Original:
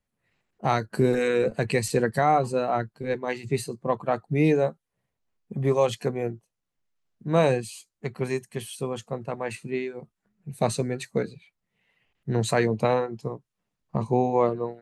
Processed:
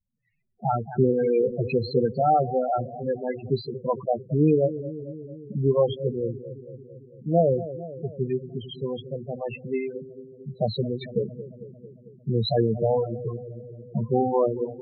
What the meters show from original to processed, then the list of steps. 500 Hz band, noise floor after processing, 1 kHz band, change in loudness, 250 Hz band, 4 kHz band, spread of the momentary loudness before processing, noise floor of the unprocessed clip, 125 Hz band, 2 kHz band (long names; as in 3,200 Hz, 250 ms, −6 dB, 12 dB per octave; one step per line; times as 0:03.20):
+1.0 dB, −51 dBFS, −0.5 dB, +0.5 dB, +0.5 dB, 0.0 dB, 14 LU, −83 dBFS, +1.5 dB, −12.5 dB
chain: pitch vibrato 0.44 Hz 36 cents
high shelf with overshoot 5,700 Hz −10.5 dB, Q 3
feedback echo with a low-pass in the loop 224 ms, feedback 71%, low-pass 1,100 Hz, level −12.5 dB
spectral peaks only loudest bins 8
level +1.5 dB